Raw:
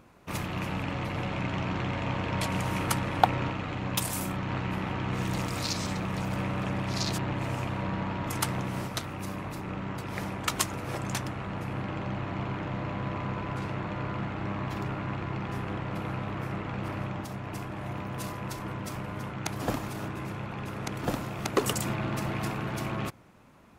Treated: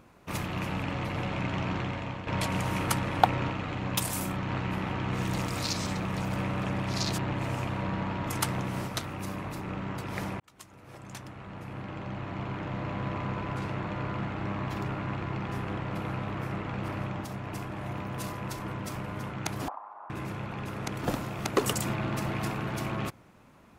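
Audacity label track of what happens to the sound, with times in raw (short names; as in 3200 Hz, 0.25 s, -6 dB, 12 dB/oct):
1.730000	2.270000	fade out, to -9.5 dB
10.400000	13.020000	fade in
19.680000	20.100000	Butterworth band-pass 930 Hz, Q 2.2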